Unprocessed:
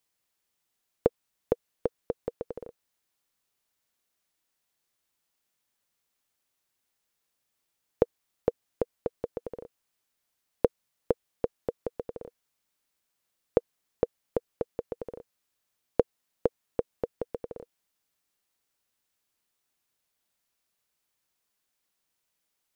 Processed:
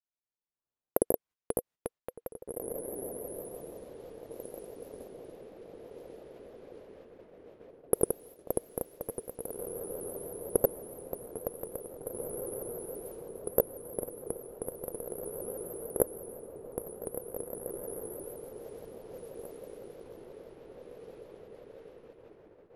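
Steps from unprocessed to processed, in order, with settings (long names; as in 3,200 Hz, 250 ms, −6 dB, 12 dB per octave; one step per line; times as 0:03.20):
camcorder AGC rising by 17 dB per second
dynamic equaliser 490 Hz, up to −4 dB, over −17 dBFS, Q 3
reversed playback
downward compressor 12 to 1, threshold −14 dBFS, peak gain reduction 22.5 dB
reversed playback
granular cloud 139 ms, grains 20 per second, spray 100 ms
bad sample-rate conversion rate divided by 4×, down none, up zero stuff
high-shelf EQ 2,600 Hz −10.5 dB
on a send: feedback delay with all-pass diffusion 1,977 ms, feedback 61%, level −6 dB
on the sum: noise gate −43 dBFS, range −13 dB
low-pass that shuts in the quiet parts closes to 1,100 Hz, open at −29 dBFS
pitch modulation by a square or saw wave saw up 6.1 Hz, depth 160 cents
level −8 dB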